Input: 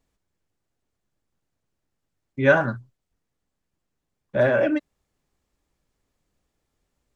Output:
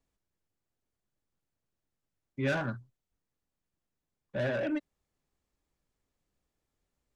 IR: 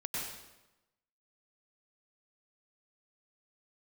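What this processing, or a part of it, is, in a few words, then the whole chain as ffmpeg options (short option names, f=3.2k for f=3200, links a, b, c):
one-band saturation: -filter_complex "[0:a]acrossover=split=300|2200[a][b][c];[b]asoftclip=type=tanh:threshold=-23.5dB[d];[a][d][c]amix=inputs=3:normalize=0,volume=-7.5dB"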